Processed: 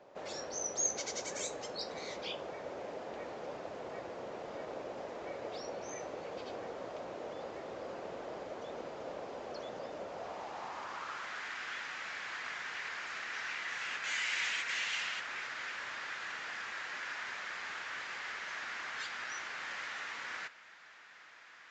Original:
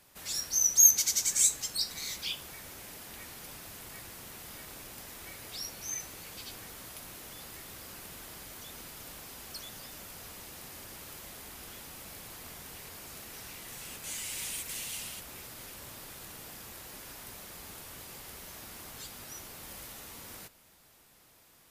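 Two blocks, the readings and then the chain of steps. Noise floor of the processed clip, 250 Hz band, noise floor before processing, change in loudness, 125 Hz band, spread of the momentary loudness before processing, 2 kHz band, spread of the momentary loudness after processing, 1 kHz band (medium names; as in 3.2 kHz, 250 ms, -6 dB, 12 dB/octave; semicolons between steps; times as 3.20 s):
-56 dBFS, +2.0 dB, -61 dBFS, -10.5 dB, -6.5 dB, 18 LU, +9.5 dB, 10 LU, +8.5 dB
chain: band-pass sweep 550 Hz -> 1.7 kHz, 10.04–11.48 s; resampled via 16 kHz; trim +16 dB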